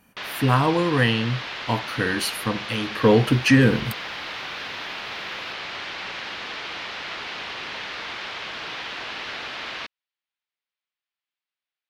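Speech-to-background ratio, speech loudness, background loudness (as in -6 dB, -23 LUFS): 10.0 dB, -21.5 LUFS, -31.5 LUFS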